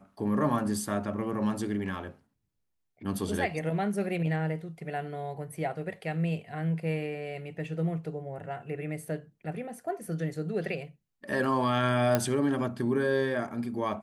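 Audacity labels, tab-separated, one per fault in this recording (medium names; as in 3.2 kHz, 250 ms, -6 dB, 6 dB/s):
12.150000	12.150000	pop -10 dBFS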